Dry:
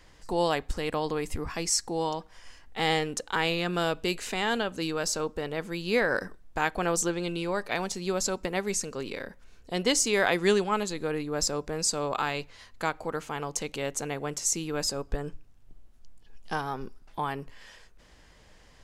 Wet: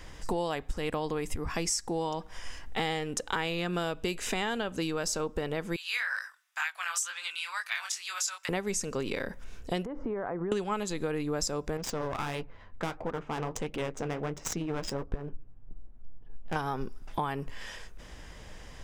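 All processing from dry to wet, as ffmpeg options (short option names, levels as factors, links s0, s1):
-filter_complex "[0:a]asettb=1/sr,asplit=3[s0][s1][s2];[s0]atrim=end=5.764[s3];[s1]atrim=start=5.76:end=8.49,asetpts=PTS-STARTPTS,afade=t=in:d=0.004:c=qsin,afade=t=out:st=2.726:d=0.004:c=qsin,flanger=delay=19:depth=6.1:speed=2.1,highpass=f=1300:w=0.5412,highpass=f=1300:w=1.3066[s4];[s2]atrim=start=8.486[s5];[s3][s4]acrossfade=d=0.004:c1=hsin:c2=qsin[s6];[s6][s5]acrossfade=d=0.004:c1=qsin:c2=hsin,asettb=1/sr,asplit=3[s7][s8][s9];[s7]atrim=end=9.854[s10];[s8]atrim=start=9.85:end=10.52,asetpts=PTS-STARTPTS,afade=t=in:d=0.004:c=qsin,afade=t=out:st=0.666:d=0.004:c=qsin,lowpass=f=1300:w=0.5412,lowpass=f=1300:w=1.3066,acompressor=threshold=0.0158:ratio=12:attack=3.2:release=140:knee=1:detection=peak[s11];[s9]atrim=start=10.516[s12];[s10][s11]acrossfade=d=0.004:c1=hsin:c2=qsin[s13];[s13][s12]acrossfade=d=0.004:c1=qsin:c2=hsin,asettb=1/sr,asplit=3[s14][s15][s16];[s14]atrim=end=11.774[s17];[s15]atrim=start=11.77:end=16.56,asetpts=PTS-STARTPTS,afade=t=in:d=0.004:c=qsin,afade=t=out:st=4.786:d=0.004:c=qsin,adynamicsmooth=sensitivity=3:basefreq=1300,flanger=delay=3.3:depth=9.4:regen=-55:speed=1.5:shape=triangular,aeval=exprs='clip(val(0),-1,0.0119)':c=same[s18];[s16]atrim=start=16.556[s19];[s17][s18]acrossfade=d=0.004:c1=hsin:c2=qsin[s20];[s20][s19]acrossfade=d=0.004:c1=qsin:c2=hsin,lowshelf=f=170:g=3.5,bandreject=f=4300:w=9.5,acompressor=threshold=0.0158:ratio=6,volume=2.37"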